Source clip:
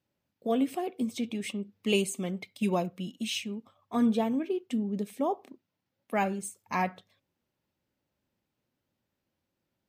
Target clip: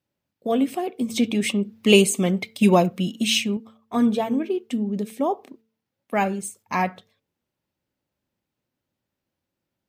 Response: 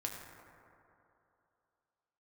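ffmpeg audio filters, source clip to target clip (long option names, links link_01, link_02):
-filter_complex "[0:a]asettb=1/sr,asplit=3[link_01][link_02][link_03];[link_01]atrim=end=1.104[link_04];[link_02]atrim=start=1.1:end=3.57,asetpts=PTS-STARTPTS,afade=type=in:duration=0.004:curve=qsin,afade=type=out:start_time=2.466:duration=0.004:curve=qsin,acontrast=54[link_05];[link_03]atrim=start=3.566[link_06];[link_04][link_05]acrossfade=duration=0.004:curve1=hsin:curve2=qsin[link_07];[link_07][link_06]acrossfade=duration=0.004:curve1=qsin:curve2=hsin,agate=range=-6dB:threshold=-55dB:ratio=16:detection=peak,bandreject=frequency=222.8:width_type=h:width=4,bandreject=frequency=445.6:width_type=h:width=4,volume=6dB"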